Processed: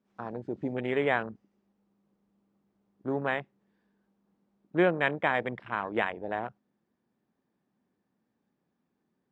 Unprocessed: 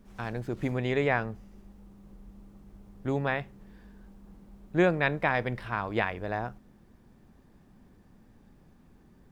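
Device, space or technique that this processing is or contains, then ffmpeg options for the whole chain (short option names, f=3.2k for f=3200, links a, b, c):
over-cleaned archive recording: -af "highpass=200,lowpass=5.7k,afwtdn=0.0158"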